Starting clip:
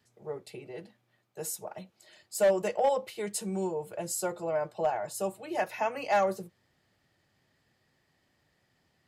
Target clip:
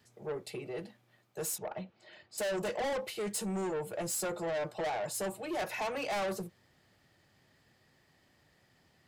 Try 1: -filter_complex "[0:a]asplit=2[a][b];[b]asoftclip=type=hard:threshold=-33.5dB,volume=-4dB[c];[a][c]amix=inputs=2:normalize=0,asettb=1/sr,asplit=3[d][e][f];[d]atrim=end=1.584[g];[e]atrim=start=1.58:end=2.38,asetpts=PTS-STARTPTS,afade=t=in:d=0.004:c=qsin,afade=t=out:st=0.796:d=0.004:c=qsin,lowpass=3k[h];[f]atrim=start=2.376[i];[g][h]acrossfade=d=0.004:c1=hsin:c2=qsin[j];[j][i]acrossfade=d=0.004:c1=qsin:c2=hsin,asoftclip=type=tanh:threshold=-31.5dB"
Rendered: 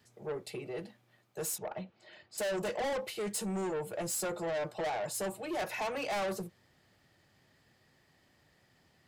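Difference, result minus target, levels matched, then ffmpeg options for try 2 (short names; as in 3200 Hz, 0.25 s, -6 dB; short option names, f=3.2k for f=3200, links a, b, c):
hard clip: distortion +10 dB
-filter_complex "[0:a]asplit=2[a][b];[b]asoftclip=type=hard:threshold=-23dB,volume=-4dB[c];[a][c]amix=inputs=2:normalize=0,asettb=1/sr,asplit=3[d][e][f];[d]atrim=end=1.584[g];[e]atrim=start=1.58:end=2.38,asetpts=PTS-STARTPTS,afade=t=in:d=0.004:c=qsin,afade=t=out:st=0.796:d=0.004:c=qsin,lowpass=3k[h];[f]atrim=start=2.376[i];[g][h]acrossfade=d=0.004:c1=hsin:c2=qsin[j];[j][i]acrossfade=d=0.004:c1=qsin:c2=hsin,asoftclip=type=tanh:threshold=-31.5dB"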